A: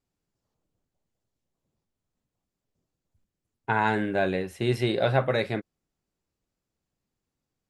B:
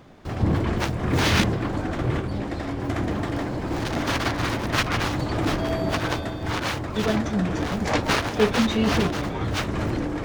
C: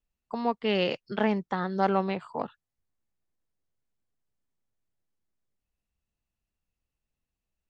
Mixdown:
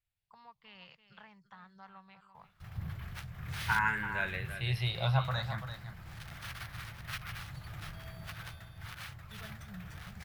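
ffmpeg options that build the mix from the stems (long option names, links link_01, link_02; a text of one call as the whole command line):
ffmpeg -i stem1.wav -i stem2.wav -i stem3.wav -filter_complex "[0:a]asplit=2[link_01][link_02];[link_02]afreqshift=0.46[link_03];[link_01][link_03]amix=inputs=2:normalize=1,volume=-1.5dB,asplit=2[link_04][link_05];[link_05]volume=-10dB[link_06];[1:a]equalizer=frequency=1000:width=3.5:gain=-10,acrusher=samples=3:mix=1:aa=0.000001,adelay=2350,volume=-16.5dB[link_07];[2:a]acompressor=threshold=-35dB:ratio=2,volume=-15dB,asplit=2[link_08][link_09];[link_09]volume=-12dB[link_10];[link_06][link_10]amix=inputs=2:normalize=0,aecho=0:1:339:1[link_11];[link_04][link_07][link_08][link_11]amix=inputs=4:normalize=0,firequalizer=gain_entry='entry(160,0);entry(260,-24);entry(1000,1);entry(8100,-2)':delay=0.05:min_phase=1" out.wav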